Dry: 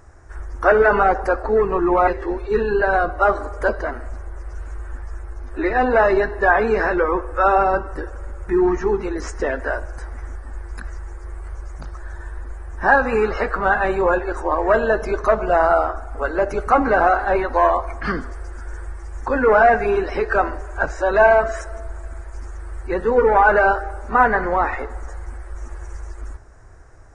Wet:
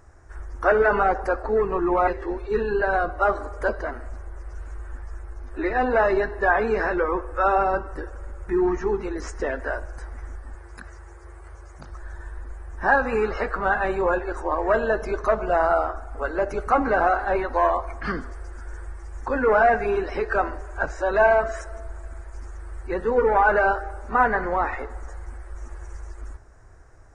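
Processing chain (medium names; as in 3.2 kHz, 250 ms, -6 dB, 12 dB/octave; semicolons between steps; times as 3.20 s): 10.55–11.90 s: high-pass 72 Hz 12 dB/octave; trim -4.5 dB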